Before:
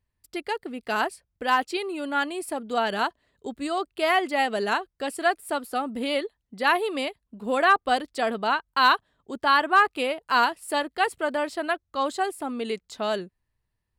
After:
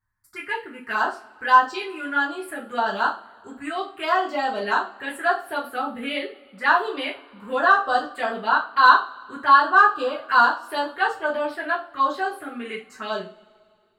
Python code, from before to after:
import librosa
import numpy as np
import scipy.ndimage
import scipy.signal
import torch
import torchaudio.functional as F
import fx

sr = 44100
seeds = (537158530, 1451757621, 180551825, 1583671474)

y = fx.peak_eq(x, sr, hz=1400.0, db=13.5, octaves=1.3)
y = fx.env_phaser(y, sr, low_hz=490.0, high_hz=2200.0, full_db=-14.5)
y = fx.rev_double_slope(y, sr, seeds[0], early_s=0.31, late_s=2.3, knee_db=-27, drr_db=-5.5)
y = F.gain(torch.from_numpy(y), -7.5).numpy()